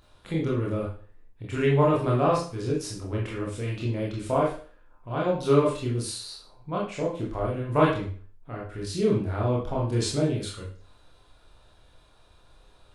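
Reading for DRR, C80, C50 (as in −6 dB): −4.5 dB, 9.5 dB, 4.0 dB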